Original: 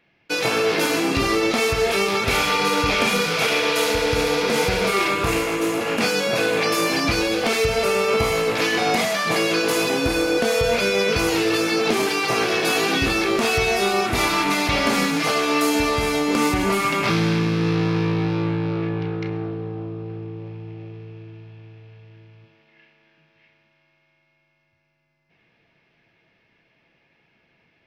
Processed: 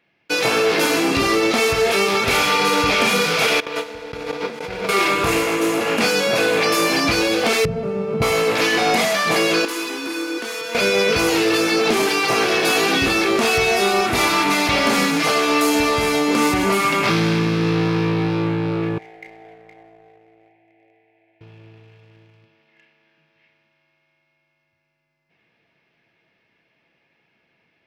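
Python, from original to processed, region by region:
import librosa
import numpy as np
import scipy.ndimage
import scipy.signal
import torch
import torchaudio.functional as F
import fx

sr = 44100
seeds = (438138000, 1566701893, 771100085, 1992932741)

y = fx.chain(x, sr, fx.lowpass(hz=2400.0, slope=6),
    fx.gate_hold(open_db=-11.0, close_db=-15.0, hold_ms=71.0, range_db=-21, attack_ms=1.4, release_ms=100.0),
    fx.over_compress(threshold_db=-30.0, ratio=-1.0), at=(3.6, 4.89))
y = fx.chain(y, sr, fx.bandpass_q(hz=100.0, q=0.5),
    fx.peak_eq(hz=160.0, db=12.5, octaves=0.63), at=(7.65, 8.22))
y = fx.chain(y, sr, fx.ladder_highpass(hz=280.0, resonance_pct=35),
    fx.band_shelf(hz=570.0, db=-11.0, octaves=1.1), at=(9.65, 10.75))
y = fx.chain(y, sr, fx.double_bandpass(hz=1200.0, octaves=1.5),
    fx.echo_single(ms=466, db=-9.0), at=(18.98, 21.41))
y = fx.low_shelf(y, sr, hz=85.0, db=-11.0)
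y = fx.leveller(y, sr, passes=1)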